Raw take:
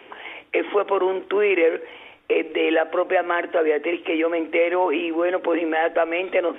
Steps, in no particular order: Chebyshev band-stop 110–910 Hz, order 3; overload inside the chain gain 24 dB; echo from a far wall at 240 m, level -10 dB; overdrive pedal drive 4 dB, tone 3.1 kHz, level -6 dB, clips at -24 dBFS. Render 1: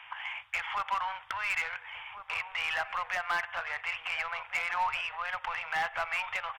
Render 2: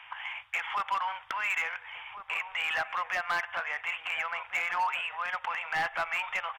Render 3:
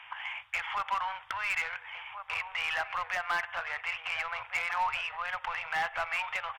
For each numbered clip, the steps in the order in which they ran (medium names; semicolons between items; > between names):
overdrive pedal > Chebyshev band-stop > overload inside the chain > echo from a far wall; Chebyshev band-stop > overdrive pedal > overload inside the chain > echo from a far wall; echo from a far wall > overdrive pedal > Chebyshev band-stop > overload inside the chain